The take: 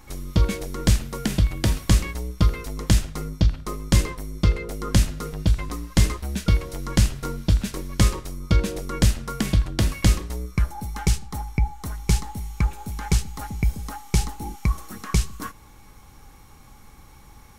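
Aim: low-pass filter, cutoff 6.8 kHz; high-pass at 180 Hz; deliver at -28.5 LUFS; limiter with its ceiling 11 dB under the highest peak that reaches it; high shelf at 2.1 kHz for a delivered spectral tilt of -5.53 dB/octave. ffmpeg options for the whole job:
-af "highpass=180,lowpass=6800,highshelf=f=2100:g=-9,volume=2.24,alimiter=limit=0.211:level=0:latency=1"

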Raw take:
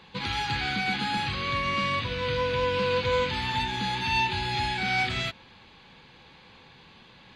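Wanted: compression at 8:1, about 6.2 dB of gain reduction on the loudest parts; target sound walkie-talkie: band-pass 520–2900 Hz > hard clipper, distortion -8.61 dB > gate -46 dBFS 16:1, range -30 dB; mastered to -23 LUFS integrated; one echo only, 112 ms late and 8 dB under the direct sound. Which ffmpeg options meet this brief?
-af "acompressor=threshold=0.0398:ratio=8,highpass=520,lowpass=2900,aecho=1:1:112:0.398,asoftclip=type=hard:threshold=0.0158,agate=range=0.0316:threshold=0.00501:ratio=16,volume=5.01"

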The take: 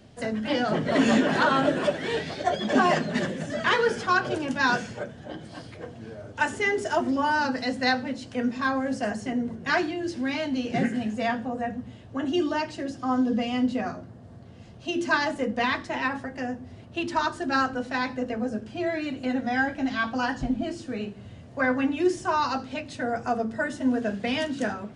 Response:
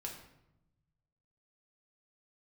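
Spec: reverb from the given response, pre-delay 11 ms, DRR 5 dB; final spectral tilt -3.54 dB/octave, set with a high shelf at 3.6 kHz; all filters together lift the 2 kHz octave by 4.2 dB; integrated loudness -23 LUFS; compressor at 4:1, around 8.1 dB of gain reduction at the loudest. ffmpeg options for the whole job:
-filter_complex "[0:a]equalizer=f=2000:t=o:g=7.5,highshelf=f=3600:g=-8,acompressor=threshold=0.0501:ratio=4,asplit=2[s0][s1];[1:a]atrim=start_sample=2205,adelay=11[s2];[s1][s2]afir=irnorm=-1:irlink=0,volume=0.668[s3];[s0][s3]amix=inputs=2:normalize=0,volume=2"

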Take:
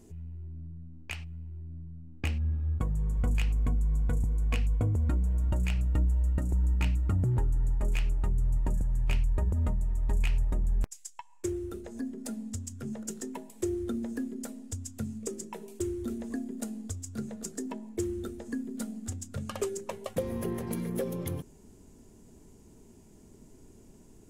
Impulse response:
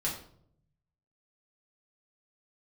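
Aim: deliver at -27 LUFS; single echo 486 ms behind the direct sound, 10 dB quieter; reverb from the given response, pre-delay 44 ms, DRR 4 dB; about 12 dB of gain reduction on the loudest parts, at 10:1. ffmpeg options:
-filter_complex "[0:a]acompressor=threshold=0.0158:ratio=10,aecho=1:1:486:0.316,asplit=2[s0][s1];[1:a]atrim=start_sample=2205,adelay=44[s2];[s1][s2]afir=irnorm=-1:irlink=0,volume=0.355[s3];[s0][s3]amix=inputs=2:normalize=0,volume=3.98"

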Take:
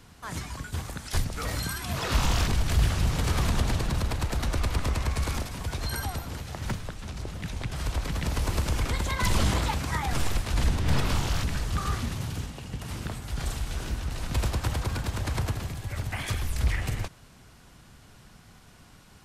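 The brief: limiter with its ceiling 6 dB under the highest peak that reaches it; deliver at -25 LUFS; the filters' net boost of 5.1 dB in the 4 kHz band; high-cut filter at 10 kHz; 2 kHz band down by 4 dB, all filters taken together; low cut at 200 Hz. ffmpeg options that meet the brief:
-af "highpass=200,lowpass=10000,equalizer=f=2000:t=o:g=-7.5,equalizer=f=4000:t=o:g=8.5,volume=2.66,alimiter=limit=0.251:level=0:latency=1"

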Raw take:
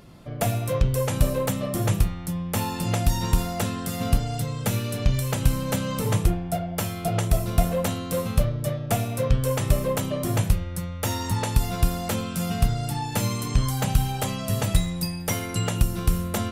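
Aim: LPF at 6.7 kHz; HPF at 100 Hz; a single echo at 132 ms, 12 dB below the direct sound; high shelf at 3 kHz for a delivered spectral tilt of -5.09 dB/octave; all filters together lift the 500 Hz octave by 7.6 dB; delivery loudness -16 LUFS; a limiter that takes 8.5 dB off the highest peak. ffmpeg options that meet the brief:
-af "highpass=100,lowpass=6700,equalizer=f=500:t=o:g=8.5,highshelf=f=3000:g=7.5,alimiter=limit=0.188:level=0:latency=1,aecho=1:1:132:0.251,volume=2.99"

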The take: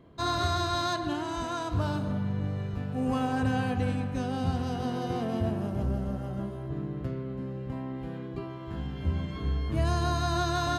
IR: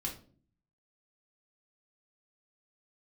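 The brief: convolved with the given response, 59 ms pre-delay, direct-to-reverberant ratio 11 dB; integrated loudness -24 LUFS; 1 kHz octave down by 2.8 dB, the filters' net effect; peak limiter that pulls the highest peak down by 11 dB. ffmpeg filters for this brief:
-filter_complex "[0:a]equalizer=f=1000:t=o:g=-4,alimiter=level_in=1.5:limit=0.0631:level=0:latency=1,volume=0.668,asplit=2[s0][s1];[1:a]atrim=start_sample=2205,adelay=59[s2];[s1][s2]afir=irnorm=-1:irlink=0,volume=0.251[s3];[s0][s3]amix=inputs=2:normalize=0,volume=3.98"

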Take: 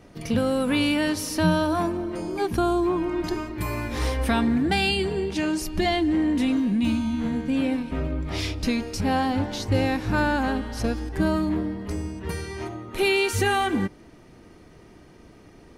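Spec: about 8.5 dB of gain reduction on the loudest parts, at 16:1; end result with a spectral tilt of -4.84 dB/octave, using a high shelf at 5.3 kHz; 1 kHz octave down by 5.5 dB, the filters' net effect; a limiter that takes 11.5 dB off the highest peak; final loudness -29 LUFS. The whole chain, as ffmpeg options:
-af "equalizer=f=1000:t=o:g=-8,highshelf=f=5300:g=7,acompressor=threshold=0.0501:ratio=16,volume=2.51,alimiter=limit=0.0891:level=0:latency=1"

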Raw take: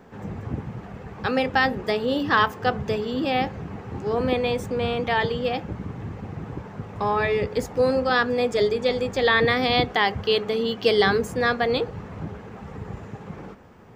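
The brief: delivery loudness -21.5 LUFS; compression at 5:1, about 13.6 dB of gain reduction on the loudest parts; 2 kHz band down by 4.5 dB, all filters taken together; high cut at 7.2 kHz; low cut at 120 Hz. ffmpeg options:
-af "highpass=120,lowpass=7200,equalizer=f=2000:t=o:g=-5.5,acompressor=threshold=0.0282:ratio=5,volume=4.73"

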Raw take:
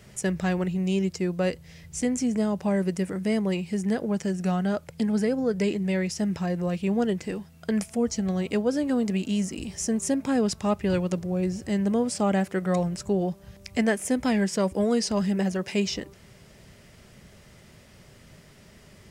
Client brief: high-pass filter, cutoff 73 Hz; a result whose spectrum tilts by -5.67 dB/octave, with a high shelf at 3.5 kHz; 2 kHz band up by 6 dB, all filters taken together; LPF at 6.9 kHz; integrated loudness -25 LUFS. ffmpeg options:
-af "highpass=73,lowpass=6900,equalizer=f=2000:t=o:g=8.5,highshelf=f=3500:g=-4.5,volume=1.19"

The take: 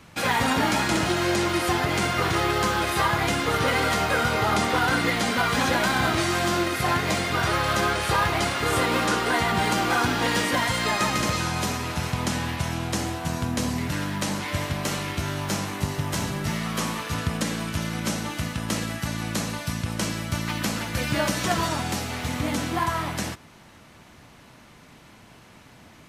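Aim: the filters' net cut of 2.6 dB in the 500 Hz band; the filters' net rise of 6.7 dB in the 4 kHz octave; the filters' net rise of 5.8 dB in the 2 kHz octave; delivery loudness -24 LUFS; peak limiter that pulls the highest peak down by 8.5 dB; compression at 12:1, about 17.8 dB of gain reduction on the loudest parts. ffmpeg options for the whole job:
-af "equalizer=f=500:t=o:g=-4,equalizer=f=2000:t=o:g=6,equalizer=f=4000:t=o:g=6.5,acompressor=threshold=0.02:ratio=12,volume=4.73,alimiter=limit=0.188:level=0:latency=1"

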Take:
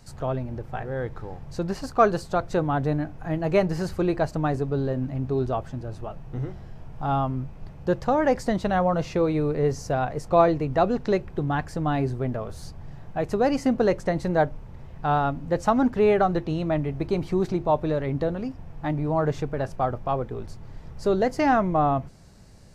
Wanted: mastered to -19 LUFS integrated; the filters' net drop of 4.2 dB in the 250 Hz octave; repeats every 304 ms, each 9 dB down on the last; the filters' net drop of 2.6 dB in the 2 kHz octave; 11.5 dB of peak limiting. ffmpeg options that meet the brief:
-af "equalizer=f=250:t=o:g=-6,equalizer=f=2000:t=o:g=-3.5,alimiter=limit=0.119:level=0:latency=1,aecho=1:1:304|608|912|1216:0.355|0.124|0.0435|0.0152,volume=3.35"

